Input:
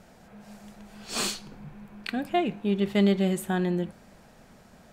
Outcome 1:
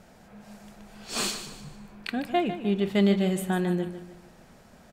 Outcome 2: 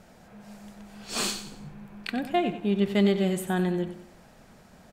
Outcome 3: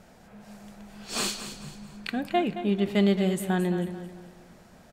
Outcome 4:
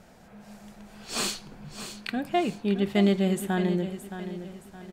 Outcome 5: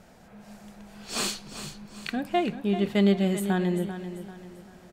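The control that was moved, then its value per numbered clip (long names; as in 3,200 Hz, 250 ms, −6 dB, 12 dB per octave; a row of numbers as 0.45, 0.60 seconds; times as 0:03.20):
repeating echo, delay time: 150, 93, 220, 619, 391 milliseconds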